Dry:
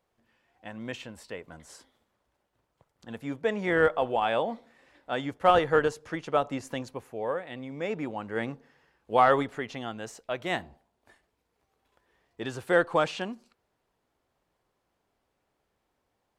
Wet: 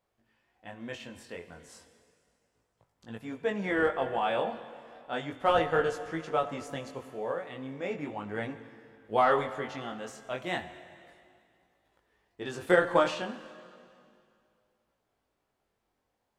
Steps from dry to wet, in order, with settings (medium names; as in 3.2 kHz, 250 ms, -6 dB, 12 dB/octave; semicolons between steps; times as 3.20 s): plate-style reverb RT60 2.4 s, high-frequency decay 0.95×, DRR 10.5 dB; chorus 0.34 Hz, delay 18 ms, depth 5.1 ms; 12.46–13.15 s: transient shaper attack +7 dB, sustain +3 dB